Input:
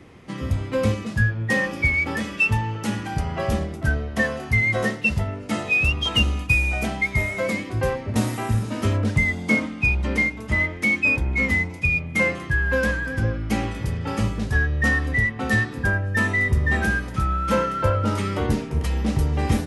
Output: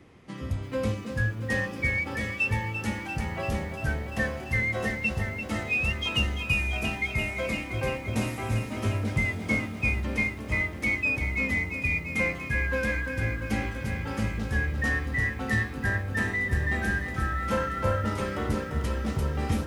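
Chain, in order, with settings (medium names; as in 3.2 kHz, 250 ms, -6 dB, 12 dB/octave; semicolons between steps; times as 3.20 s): bit-crushed delay 343 ms, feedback 80%, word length 8-bit, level -9 dB; trim -7 dB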